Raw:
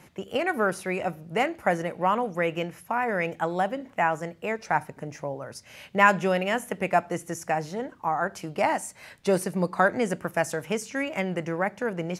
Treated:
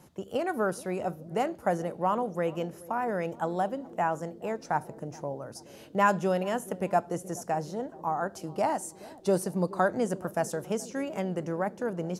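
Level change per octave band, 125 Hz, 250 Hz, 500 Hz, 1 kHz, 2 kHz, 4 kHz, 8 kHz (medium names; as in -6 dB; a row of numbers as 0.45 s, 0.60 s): -2.0 dB, -2.0 dB, -2.5 dB, -3.5 dB, -9.5 dB, -7.5 dB, -2.5 dB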